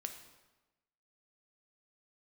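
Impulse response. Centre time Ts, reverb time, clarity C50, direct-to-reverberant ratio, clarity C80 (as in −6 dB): 19 ms, 1.1 s, 8.5 dB, 5.0 dB, 10.5 dB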